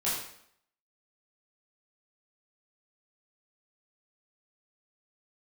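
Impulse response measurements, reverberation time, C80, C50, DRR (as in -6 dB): 0.65 s, 5.0 dB, 2.0 dB, -9.5 dB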